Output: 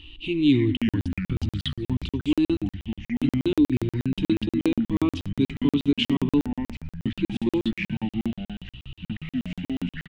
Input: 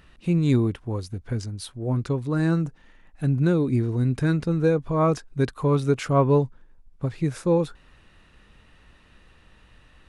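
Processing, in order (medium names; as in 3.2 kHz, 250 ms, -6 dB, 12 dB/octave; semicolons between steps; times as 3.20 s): in parallel at 0 dB: compression, threshold -34 dBFS, peak gain reduction 18.5 dB; on the sum: FFT filter 100 Hz 0 dB, 180 Hz -21 dB, 300 Hz +6 dB, 570 Hz -28 dB, 910 Hz -10 dB, 1.6 kHz -24 dB, 3 kHz +14 dB, 5.2 kHz -12 dB, 12 kHz -22 dB; feedback delay 89 ms, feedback 48%, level -20 dB; ever faster or slower copies 233 ms, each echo -4 st, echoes 3, each echo -6 dB; crackling interface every 0.12 s, samples 2048, zero, from 0.77 s; trim +2 dB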